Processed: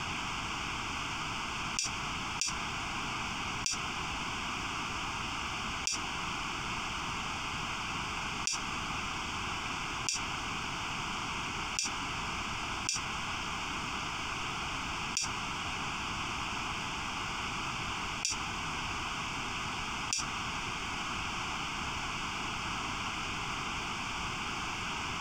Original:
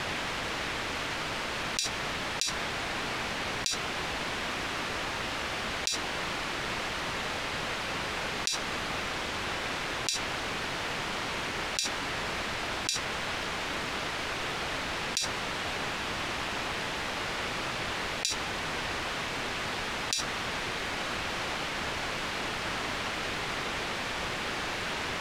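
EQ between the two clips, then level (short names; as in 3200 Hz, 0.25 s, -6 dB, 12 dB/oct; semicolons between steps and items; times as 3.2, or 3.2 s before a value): fixed phaser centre 2700 Hz, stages 8; 0.0 dB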